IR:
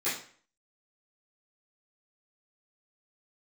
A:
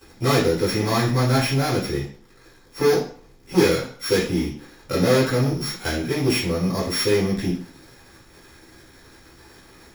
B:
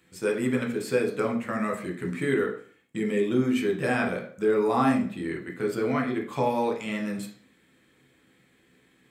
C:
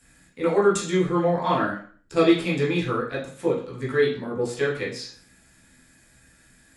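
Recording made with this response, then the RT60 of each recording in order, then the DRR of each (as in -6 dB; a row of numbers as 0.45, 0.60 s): A; 0.50, 0.50, 0.50 s; -15.0, 0.5, -7.0 dB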